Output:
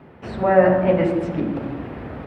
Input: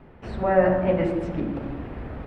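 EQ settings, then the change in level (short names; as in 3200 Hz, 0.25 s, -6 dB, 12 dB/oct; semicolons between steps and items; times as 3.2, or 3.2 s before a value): HPF 98 Hz 12 dB/oct; +4.5 dB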